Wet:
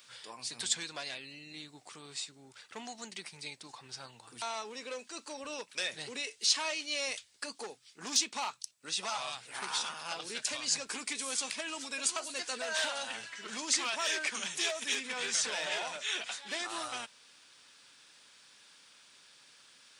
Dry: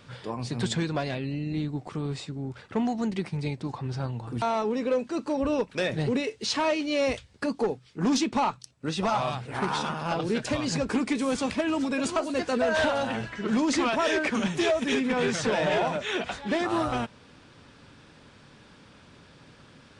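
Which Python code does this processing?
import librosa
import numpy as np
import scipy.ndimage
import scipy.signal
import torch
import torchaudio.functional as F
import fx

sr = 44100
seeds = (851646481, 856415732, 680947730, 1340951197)

y = np.diff(x, prepend=0.0)
y = F.gain(torch.from_numpy(y), 6.0).numpy()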